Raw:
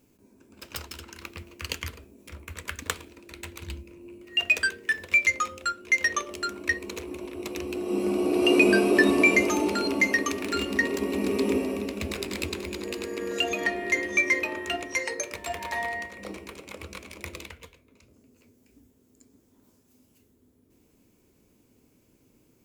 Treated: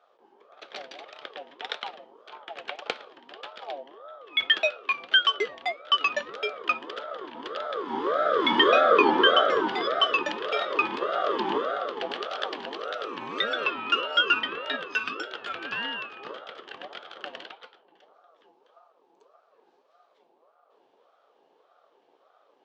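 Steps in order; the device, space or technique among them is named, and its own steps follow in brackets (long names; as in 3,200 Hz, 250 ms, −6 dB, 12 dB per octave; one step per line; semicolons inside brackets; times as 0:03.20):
0:08.81–0:09.68: spectral tilt −1.5 dB per octave
voice changer toy (ring modulator whose carrier an LFO sweeps 780 Hz, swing 25%, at 1.7 Hz; loudspeaker in its box 410–3,800 Hz, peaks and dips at 430 Hz +3 dB, 1,000 Hz −9 dB, 2,000 Hz −5 dB)
level +5.5 dB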